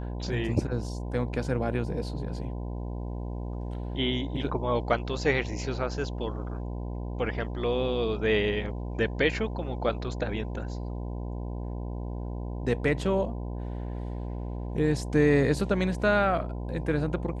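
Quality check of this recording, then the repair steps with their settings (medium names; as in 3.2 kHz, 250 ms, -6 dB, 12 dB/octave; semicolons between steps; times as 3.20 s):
buzz 60 Hz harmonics 17 -34 dBFS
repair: de-hum 60 Hz, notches 17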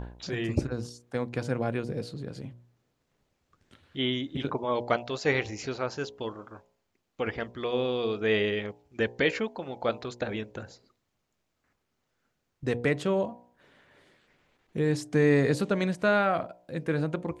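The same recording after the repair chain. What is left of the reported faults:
nothing left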